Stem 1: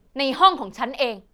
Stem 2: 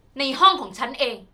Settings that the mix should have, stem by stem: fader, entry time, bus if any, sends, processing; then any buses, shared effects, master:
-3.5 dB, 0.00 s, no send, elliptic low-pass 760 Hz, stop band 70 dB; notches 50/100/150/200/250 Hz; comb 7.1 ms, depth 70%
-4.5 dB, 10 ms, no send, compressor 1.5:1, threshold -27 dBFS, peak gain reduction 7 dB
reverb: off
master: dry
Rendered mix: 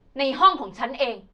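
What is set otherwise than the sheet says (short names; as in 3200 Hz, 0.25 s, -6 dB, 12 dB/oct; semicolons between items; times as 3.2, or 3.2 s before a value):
stem 1: missing elliptic low-pass 760 Hz, stop band 70 dB; master: extra air absorption 120 m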